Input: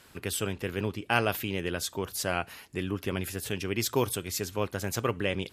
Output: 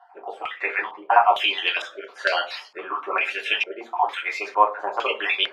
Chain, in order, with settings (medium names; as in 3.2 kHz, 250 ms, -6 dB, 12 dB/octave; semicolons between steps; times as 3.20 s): random holes in the spectrogram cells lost 35%; high-pass 560 Hz 24 dB/octave; reverberation, pre-delay 3 ms, DRR -2 dB; step-sequenced low-pass 2.2 Hz 770–4200 Hz; trim +6 dB